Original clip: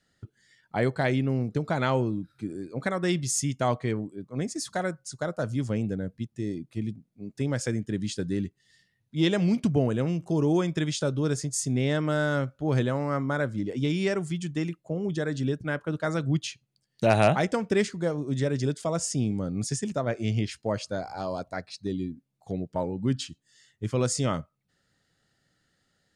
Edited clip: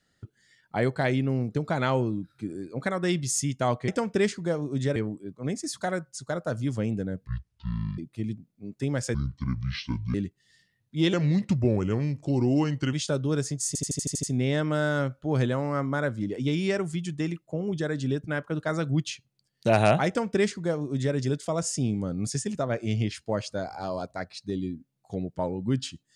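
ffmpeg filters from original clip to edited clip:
-filter_complex "[0:a]asplit=16[a][b][c][d][e][f][g][h][i][j][k][l][m][n][o][p];[a]atrim=end=3.882[q];[b]atrim=start=17.438:end=18.522[r];[c]atrim=start=3.878:end=6.194[s];[d]atrim=start=6.19:end=6.56,asetpts=PTS-STARTPTS,asetrate=22932,aresample=44100[t];[e]atrim=start=6.556:end=7.724[u];[f]atrim=start=7.72:end=8.34,asetpts=PTS-STARTPTS,asetrate=27342,aresample=44100[v];[g]atrim=start=8.336:end=9.334[w];[h]atrim=start=9.33:end=10.86,asetpts=PTS-STARTPTS,asetrate=37485,aresample=44100[x];[i]atrim=start=10.856:end=11.682[y];[j]atrim=start=11.598:end=11.682[z];[k]atrim=start=11.598:end=11.682[aa];[l]atrim=start=11.598:end=11.682[ab];[m]atrim=start=11.598:end=11.682[ac];[n]atrim=start=11.598:end=11.682[ad];[o]atrim=start=11.598:end=11.682[ae];[p]atrim=start=11.598[af];[q][r]acrossfade=d=0.004:c1=hsin:c2=hsin[ag];[ag][s]acrossfade=d=0.004:c1=hsin:c2=hsin[ah];[ah][t]acrossfade=d=0.004:c1=hsin:c2=hsin[ai];[ai][u]acrossfade=d=0.004:c1=hsin:c2=hsin[aj];[aj][v]acrossfade=d=0.004:c1=hsin:c2=hsin[ak];[ak][w]acrossfade=d=0.004:c1=hsin:c2=hsin[al];[al][x]acrossfade=d=0.004:c1=hsin:c2=hsin[am];[am][y]acrossfade=d=0.004:c1=hsin:c2=hsin[an];[an][z]acrossfade=d=0.004:c1=hsin:c2=hsin[ao];[ao][aa]acrossfade=d=0.004:c1=hsin:c2=hsin[ap];[ap][ab]acrossfade=d=0.004:c1=hsin:c2=hsin[aq];[aq][ac]acrossfade=d=0.004:c1=hsin:c2=hsin[ar];[ar][ad]acrossfade=d=0.004:c1=hsin:c2=hsin[as];[as][ae]acrossfade=d=0.004:c1=hsin:c2=hsin[at];[at][af]acrossfade=d=0.004:c1=hsin:c2=hsin"

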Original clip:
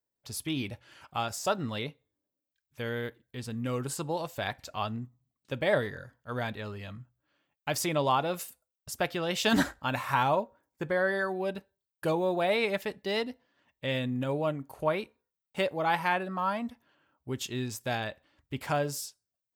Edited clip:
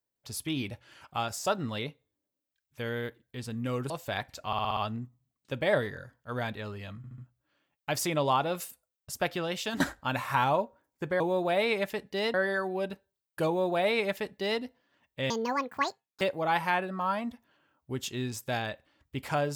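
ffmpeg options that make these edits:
-filter_complex "[0:a]asplit=15[a][b][c][d][e][f][g][h][i][j][k][l][m][n][o];[a]atrim=end=3.902[p];[b]atrim=start=4.198:end=4.832[q];[c]atrim=start=4.768:end=4.832[r];[d]atrim=start=4.768:end=4.832[s];[e]atrim=start=4.768:end=4.832[t];[f]atrim=start=4.768:end=4.832[u];[g]atrim=start=4.768:end=7.042[v];[h]atrim=start=6.968:end=7.042[w];[i]atrim=start=6.968:end=7.042[x];[j]atrim=start=6.968:end=9.59,asetpts=PTS-STARTPTS,afade=t=out:st=2.222:d=0.4:silence=0.177828[y];[k]atrim=start=9.59:end=10.992,asetpts=PTS-STARTPTS,afade=t=in:d=0.004:c=hsin:silence=0.177828[z];[l]atrim=start=12.118:end=13.262[aa];[m]atrim=start=10.988:end=13.954[ab];[n]atrim=start=13.95:end=15.59,asetpts=PTS-STARTPTS,asetrate=79380,aresample=44100[ac];[o]atrim=start=15.586[ad];[p][q]acrossfade=d=0.004:c1=hsin:c2=hsin[ae];[ae][r]acrossfade=d=0.004:c1=hsin:c2=hsin[af];[af][s]acrossfade=d=0.004:c1=hsin:c2=hsin[ag];[ag][t]acrossfade=d=0.004:c1=hsin:c2=hsin[ah];[ah][u]acrossfade=d=0.004:c1=hsin:c2=hsin[ai];[ai][v]acrossfade=d=0.004:c1=hsin:c2=hsin[aj];[aj][w]acrossfade=d=0.004:c1=hsin:c2=hsin[ak];[ak][x]acrossfade=d=0.004:c1=hsin:c2=hsin[al];[y][z]concat=n=2:v=0:a=1[am];[al][am]acrossfade=d=0.004:c1=hsin:c2=hsin[an];[an][aa]acrossfade=d=0.004:c1=hsin:c2=hsin[ao];[ao][ab]acrossfade=d=0.004:c1=hsin:c2=hsin[ap];[ap][ac]acrossfade=d=0.004:c1=hsin:c2=hsin[aq];[aq][ad]acrossfade=d=0.004:c1=hsin:c2=hsin"

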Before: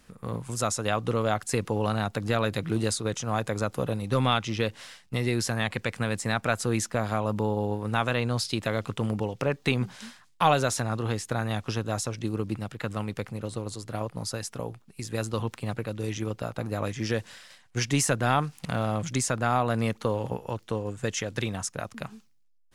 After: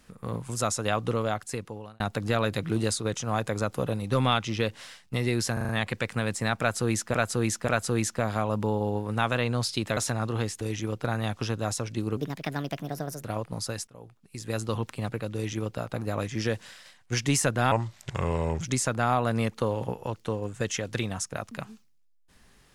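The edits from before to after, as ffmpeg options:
-filter_complex "[0:a]asplit=16[a][b][c][d][e][f][g][h][i][j][k][l][m][n][o][p];[a]atrim=end=2,asetpts=PTS-STARTPTS,afade=t=out:st=1.05:d=0.95[q];[b]atrim=start=2:end=5.572,asetpts=PTS-STARTPTS,afade=t=in:d=0.004:c=hsin[r];[c]atrim=start=5.528:end=5.572[s];[d]atrim=start=5.528:end=5.572[t];[e]atrim=start=5.528:end=5.572[u];[f]atrim=start=5.528:end=6.982[v];[g]atrim=start=6.438:end=6.982[w];[h]atrim=start=6.438:end=8.732[x];[i]atrim=start=10.668:end=11.312[y];[j]atrim=start=15.988:end=16.422[z];[k]atrim=start=11.308:end=12.444[aa];[l]atrim=start=12.44:end=13.89,asetpts=PTS-STARTPTS,asetrate=59535,aresample=44100[ab];[m]atrim=start=13.886:end=14.52,asetpts=PTS-STARTPTS,afade=t=out:st=0.63:d=0.004:c=hsin:silence=0.0794328[ac];[n]atrim=start=14.52:end=18.364,asetpts=PTS-STARTPTS,afade=t=in:d=0.72:silence=0.0794328[ad];[o]atrim=start=18.36:end=19.04,asetpts=PTS-STARTPTS,asetrate=33516,aresample=44100[ae];[p]atrim=start=19.036[af];[q][r]concat=n=2:v=0:a=1[ag];[ag][s]acrossfade=d=0.004:c1=hsin:c2=hsin[ah];[ah][t]acrossfade=d=0.004:c1=hsin:c2=hsin[ai];[ai][u]acrossfade=d=0.004:c1=hsin:c2=hsin[aj];[aj][v]acrossfade=d=0.004:c1=hsin:c2=hsin[ak];[ak][w]acrossfade=d=0.004:c1=hsin:c2=hsin[al];[al][x]acrossfade=d=0.004:c1=hsin:c2=hsin[am];[am][y]acrossfade=d=0.004:c1=hsin:c2=hsin[an];[an][z]acrossfade=d=0.004:c1=hsin:c2=hsin[ao];[ao][aa]acrossfade=d=0.004:c1=hsin:c2=hsin[ap];[ap][ab]acrossfade=d=0.004:c1=hsin:c2=hsin[aq];[ac][ad]concat=n=2:v=0:a=1[ar];[aq][ar]acrossfade=d=0.004:c1=hsin:c2=hsin[as];[as][ae]acrossfade=d=0.004:c1=hsin:c2=hsin[at];[at][af]acrossfade=d=0.004:c1=hsin:c2=hsin"

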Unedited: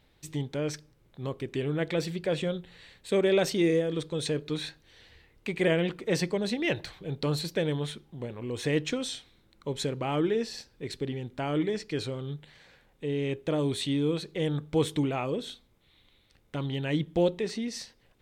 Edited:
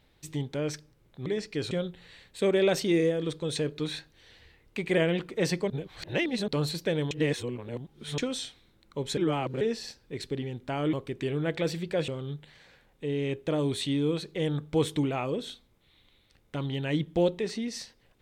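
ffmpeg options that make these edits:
-filter_complex "[0:a]asplit=11[a][b][c][d][e][f][g][h][i][j][k];[a]atrim=end=1.262[l];[b]atrim=start=11.628:end=12.082[m];[c]atrim=start=2.408:end=6.402[n];[d]atrim=start=6.398:end=7.182,asetpts=PTS-STARTPTS,areverse[o];[e]atrim=start=7.178:end=7.812[p];[f]atrim=start=7.808:end=8.882,asetpts=PTS-STARTPTS,areverse[q];[g]atrim=start=8.878:end=9.872[r];[h]atrim=start=9.868:end=10.312,asetpts=PTS-STARTPTS,areverse[s];[i]atrim=start=10.308:end=11.632[t];[j]atrim=start=1.258:end=2.412[u];[k]atrim=start=12.078[v];[l][m]acrossfade=d=0.004:c1=hsin:c2=hsin[w];[w][n]acrossfade=d=0.004:c1=hsin:c2=hsin[x];[x][o]acrossfade=d=0.004:c1=hsin:c2=hsin[y];[y][p]acrossfade=d=0.004:c1=hsin:c2=hsin[z];[z][q]acrossfade=d=0.004:c1=hsin:c2=hsin[aa];[aa][r]acrossfade=d=0.004:c1=hsin:c2=hsin[ab];[ab][s]acrossfade=d=0.004:c1=hsin:c2=hsin[ac];[ac][t]acrossfade=d=0.004:c1=hsin:c2=hsin[ad];[ad][u]acrossfade=d=0.004:c1=hsin:c2=hsin[ae];[ae][v]acrossfade=d=0.004:c1=hsin:c2=hsin"

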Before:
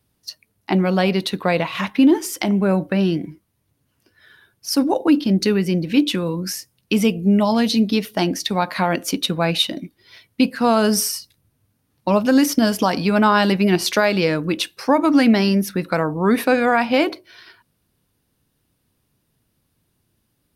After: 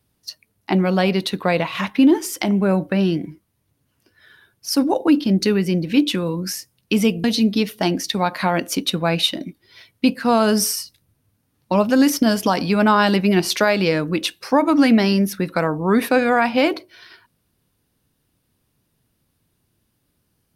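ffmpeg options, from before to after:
-filter_complex "[0:a]asplit=2[a][b];[a]atrim=end=7.242[c];[b]atrim=start=7.598[d];[c][d]acrossfade=d=0.004:c1=hsin:c2=hsin"

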